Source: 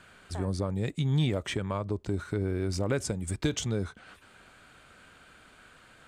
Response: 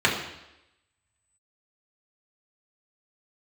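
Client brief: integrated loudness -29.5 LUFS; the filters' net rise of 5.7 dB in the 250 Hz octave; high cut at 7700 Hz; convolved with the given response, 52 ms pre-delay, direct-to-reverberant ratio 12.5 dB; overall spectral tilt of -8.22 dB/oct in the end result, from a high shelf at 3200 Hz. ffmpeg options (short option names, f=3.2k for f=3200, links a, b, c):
-filter_complex "[0:a]lowpass=7.7k,equalizer=f=250:t=o:g=8,highshelf=f=3.2k:g=-6.5,asplit=2[a][b];[1:a]atrim=start_sample=2205,adelay=52[c];[b][c]afir=irnorm=-1:irlink=0,volume=-30dB[d];[a][d]amix=inputs=2:normalize=0,volume=-1.5dB"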